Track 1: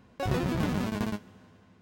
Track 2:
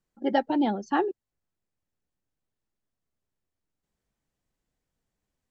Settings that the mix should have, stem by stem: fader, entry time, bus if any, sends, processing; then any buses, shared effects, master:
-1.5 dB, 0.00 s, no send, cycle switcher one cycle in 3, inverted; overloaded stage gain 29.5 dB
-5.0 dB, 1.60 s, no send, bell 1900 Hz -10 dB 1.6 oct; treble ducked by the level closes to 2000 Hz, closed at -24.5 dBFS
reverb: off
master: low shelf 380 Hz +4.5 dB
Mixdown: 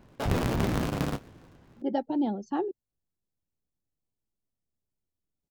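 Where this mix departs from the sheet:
stem 1: missing overloaded stage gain 29.5 dB; stem 2: missing treble ducked by the level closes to 2000 Hz, closed at -24.5 dBFS

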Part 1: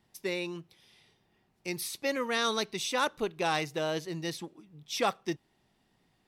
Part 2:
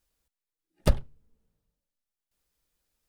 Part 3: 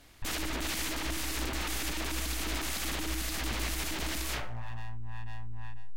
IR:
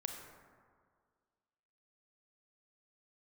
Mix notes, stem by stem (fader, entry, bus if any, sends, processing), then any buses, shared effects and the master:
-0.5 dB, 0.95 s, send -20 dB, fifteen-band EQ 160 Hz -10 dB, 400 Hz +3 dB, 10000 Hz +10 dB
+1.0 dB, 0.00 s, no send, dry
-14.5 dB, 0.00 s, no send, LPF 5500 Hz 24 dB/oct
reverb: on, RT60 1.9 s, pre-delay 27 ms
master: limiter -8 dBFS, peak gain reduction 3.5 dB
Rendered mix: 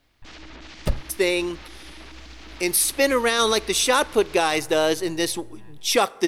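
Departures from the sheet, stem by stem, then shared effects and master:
stem 1 -0.5 dB -> +10.5 dB; stem 3 -14.5 dB -> -7.5 dB

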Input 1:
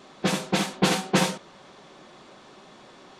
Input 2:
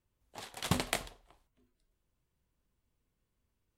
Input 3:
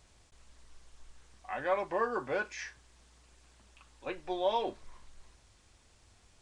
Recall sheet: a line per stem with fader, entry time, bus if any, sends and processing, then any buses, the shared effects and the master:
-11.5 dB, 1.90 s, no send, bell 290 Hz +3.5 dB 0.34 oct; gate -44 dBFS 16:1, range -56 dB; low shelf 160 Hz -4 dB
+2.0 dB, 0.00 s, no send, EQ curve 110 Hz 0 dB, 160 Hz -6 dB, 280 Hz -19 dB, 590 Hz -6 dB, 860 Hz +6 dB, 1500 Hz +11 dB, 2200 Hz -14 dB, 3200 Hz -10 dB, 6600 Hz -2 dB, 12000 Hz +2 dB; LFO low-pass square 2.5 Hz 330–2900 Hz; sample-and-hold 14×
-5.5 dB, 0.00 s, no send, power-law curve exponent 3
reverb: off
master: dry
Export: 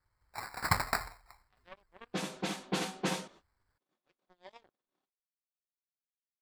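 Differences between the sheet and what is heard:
stem 2: missing LFO low-pass square 2.5 Hz 330–2900 Hz; stem 3 -5.5 dB -> -14.0 dB

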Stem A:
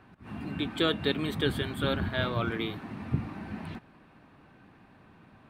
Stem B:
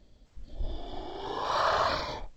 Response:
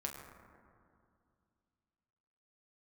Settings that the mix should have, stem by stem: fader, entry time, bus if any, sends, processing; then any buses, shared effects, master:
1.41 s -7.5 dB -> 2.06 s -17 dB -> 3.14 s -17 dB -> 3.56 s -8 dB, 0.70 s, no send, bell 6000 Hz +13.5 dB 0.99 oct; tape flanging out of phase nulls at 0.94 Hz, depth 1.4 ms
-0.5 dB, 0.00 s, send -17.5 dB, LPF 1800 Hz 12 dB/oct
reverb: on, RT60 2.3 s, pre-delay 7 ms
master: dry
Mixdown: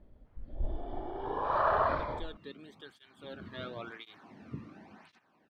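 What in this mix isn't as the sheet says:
stem A: entry 0.70 s -> 1.40 s; master: extra high shelf 4000 Hz -11.5 dB

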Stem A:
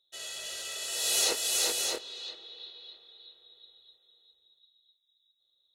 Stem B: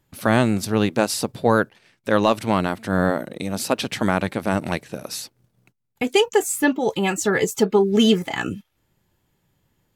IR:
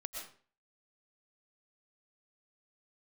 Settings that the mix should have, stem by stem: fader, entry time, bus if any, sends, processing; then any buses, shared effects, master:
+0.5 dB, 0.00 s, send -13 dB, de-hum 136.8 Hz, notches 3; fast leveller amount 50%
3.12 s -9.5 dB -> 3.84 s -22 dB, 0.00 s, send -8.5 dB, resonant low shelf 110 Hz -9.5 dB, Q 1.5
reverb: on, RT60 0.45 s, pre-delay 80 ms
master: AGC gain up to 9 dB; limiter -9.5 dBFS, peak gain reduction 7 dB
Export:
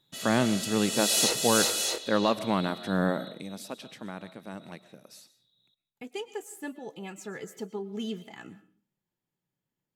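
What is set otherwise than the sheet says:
stem A: missing fast leveller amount 50%; master: missing AGC gain up to 9 dB

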